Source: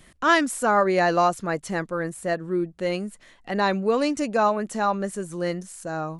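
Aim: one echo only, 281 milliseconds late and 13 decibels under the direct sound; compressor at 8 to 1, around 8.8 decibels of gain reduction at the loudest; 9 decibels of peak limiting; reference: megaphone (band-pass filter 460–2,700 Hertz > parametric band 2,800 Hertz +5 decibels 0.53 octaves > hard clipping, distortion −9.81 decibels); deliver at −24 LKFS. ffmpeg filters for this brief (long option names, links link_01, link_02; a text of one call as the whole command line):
ffmpeg -i in.wav -af "acompressor=threshold=-24dB:ratio=8,alimiter=limit=-24dB:level=0:latency=1,highpass=460,lowpass=2700,equalizer=frequency=2800:width_type=o:width=0.53:gain=5,aecho=1:1:281:0.224,asoftclip=type=hard:threshold=-32.5dB,volume=14.5dB" out.wav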